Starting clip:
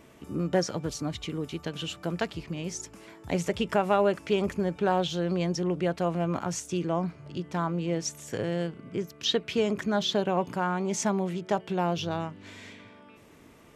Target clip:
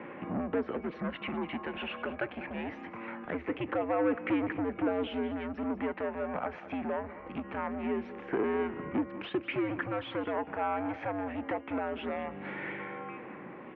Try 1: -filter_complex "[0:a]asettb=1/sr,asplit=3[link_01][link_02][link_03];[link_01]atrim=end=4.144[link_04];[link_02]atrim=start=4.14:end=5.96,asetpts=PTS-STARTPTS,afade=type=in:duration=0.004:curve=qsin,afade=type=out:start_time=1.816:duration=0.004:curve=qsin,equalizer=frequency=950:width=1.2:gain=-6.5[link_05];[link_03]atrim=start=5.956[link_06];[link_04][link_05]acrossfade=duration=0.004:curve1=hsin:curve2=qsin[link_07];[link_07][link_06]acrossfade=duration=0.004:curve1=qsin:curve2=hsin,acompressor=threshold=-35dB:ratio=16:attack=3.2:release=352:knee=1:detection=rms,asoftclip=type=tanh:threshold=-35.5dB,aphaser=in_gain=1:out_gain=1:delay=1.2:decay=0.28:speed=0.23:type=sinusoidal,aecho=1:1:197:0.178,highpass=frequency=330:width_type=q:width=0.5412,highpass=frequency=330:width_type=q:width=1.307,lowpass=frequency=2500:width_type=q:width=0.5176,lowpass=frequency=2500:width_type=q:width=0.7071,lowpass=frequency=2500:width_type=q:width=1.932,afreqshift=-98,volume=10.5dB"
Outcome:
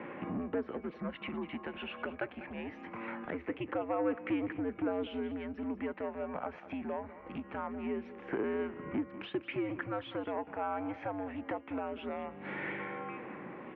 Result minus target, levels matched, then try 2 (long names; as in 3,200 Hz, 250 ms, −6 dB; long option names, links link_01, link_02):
downward compressor: peak gain reduction +7 dB
-filter_complex "[0:a]asettb=1/sr,asplit=3[link_01][link_02][link_03];[link_01]atrim=end=4.144[link_04];[link_02]atrim=start=4.14:end=5.96,asetpts=PTS-STARTPTS,afade=type=in:duration=0.004:curve=qsin,afade=type=out:start_time=1.816:duration=0.004:curve=qsin,equalizer=frequency=950:width=1.2:gain=-6.5[link_05];[link_03]atrim=start=5.956[link_06];[link_04][link_05]acrossfade=duration=0.004:curve1=hsin:curve2=qsin[link_07];[link_07][link_06]acrossfade=duration=0.004:curve1=qsin:curve2=hsin,acompressor=threshold=-27.5dB:ratio=16:attack=3.2:release=352:knee=1:detection=rms,asoftclip=type=tanh:threshold=-35.5dB,aphaser=in_gain=1:out_gain=1:delay=1.2:decay=0.28:speed=0.23:type=sinusoidal,aecho=1:1:197:0.178,highpass=frequency=330:width_type=q:width=0.5412,highpass=frequency=330:width_type=q:width=1.307,lowpass=frequency=2500:width_type=q:width=0.5176,lowpass=frequency=2500:width_type=q:width=0.7071,lowpass=frequency=2500:width_type=q:width=1.932,afreqshift=-98,volume=10.5dB"